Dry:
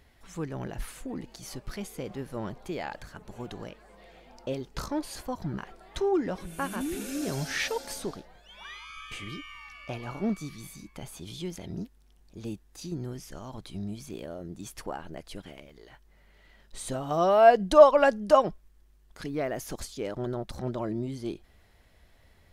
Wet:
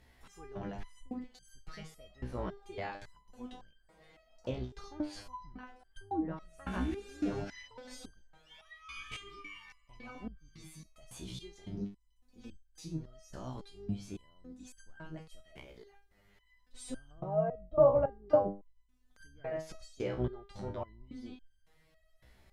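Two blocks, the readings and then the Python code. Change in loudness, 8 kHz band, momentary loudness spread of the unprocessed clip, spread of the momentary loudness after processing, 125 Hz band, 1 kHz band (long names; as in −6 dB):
−8.5 dB, −13.0 dB, 20 LU, 20 LU, −5.0 dB, −13.5 dB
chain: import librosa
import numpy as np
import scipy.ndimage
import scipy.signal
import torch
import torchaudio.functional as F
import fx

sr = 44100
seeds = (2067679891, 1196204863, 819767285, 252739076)

y = fx.octave_divider(x, sr, octaves=2, level_db=-4.0)
y = fx.env_lowpass_down(y, sr, base_hz=560.0, full_db=-21.0)
y = fx.resonator_held(y, sr, hz=3.6, low_hz=63.0, high_hz=1600.0)
y = F.gain(torch.from_numpy(y), 5.0).numpy()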